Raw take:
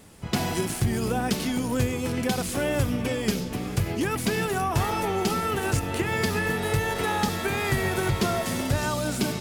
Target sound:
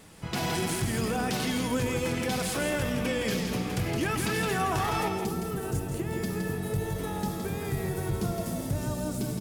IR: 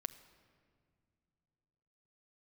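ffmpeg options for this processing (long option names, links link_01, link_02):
-filter_complex "[0:a]asetnsamples=nb_out_samples=441:pad=0,asendcmd='5.08 equalizer g -13',equalizer=frequency=2300:width=0.34:gain=3.5,alimiter=limit=-18.5dB:level=0:latency=1:release=14,aecho=1:1:166:0.531[link_01];[1:a]atrim=start_sample=2205[link_02];[link_01][link_02]afir=irnorm=-1:irlink=0"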